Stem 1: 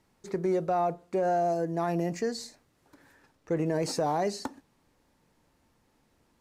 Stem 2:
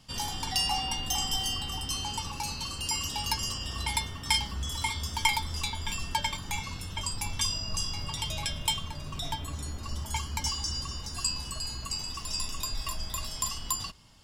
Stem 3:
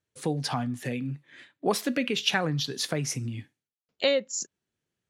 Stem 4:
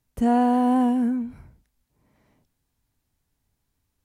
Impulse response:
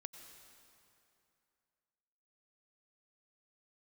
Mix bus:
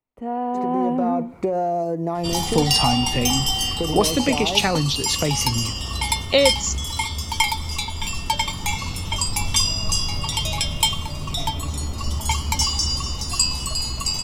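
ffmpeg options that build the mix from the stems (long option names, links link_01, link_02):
-filter_complex "[0:a]equalizer=frequency=6300:width_type=o:width=2.6:gain=-7,acompressor=threshold=-34dB:ratio=6,adelay=300,volume=1dB[link_01];[1:a]adelay=2150,volume=-5dB,asplit=2[link_02][link_03];[link_03]volume=-4dB[link_04];[2:a]adelay=2300,volume=-2.5dB[link_05];[3:a]acrossover=split=290 2600:gain=0.2 1 0.0891[link_06][link_07][link_08];[link_06][link_07][link_08]amix=inputs=3:normalize=0,volume=-4.5dB[link_09];[4:a]atrim=start_sample=2205[link_10];[link_04][link_10]afir=irnorm=-1:irlink=0[link_11];[link_01][link_02][link_05][link_09][link_11]amix=inputs=5:normalize=0,dynaudnorm=framelen=360:gausssize=5:maxgain=13.5dB,equalizer=frequency=1600:width=6.4:gain=-13"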